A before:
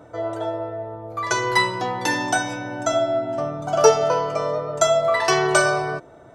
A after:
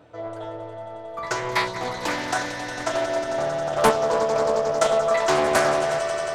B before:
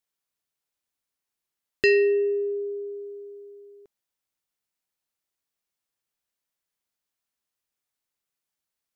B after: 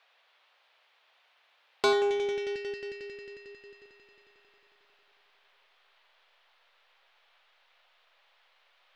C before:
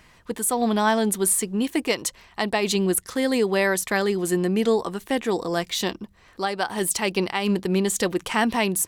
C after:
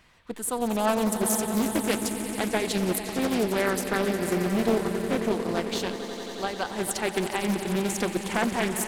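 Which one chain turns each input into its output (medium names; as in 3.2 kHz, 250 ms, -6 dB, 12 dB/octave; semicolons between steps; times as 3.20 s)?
echo with a slow build-up 90 ms, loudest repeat 5, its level -12.5 dB; band noise 530–3700 Hz -61 dBFS; in parallel at -7 dB: hysteresis with a dead band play -13.5 dBFS; on the sum: loudspeaker Doppler distortion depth 0.5 ms; trim -6.5 dB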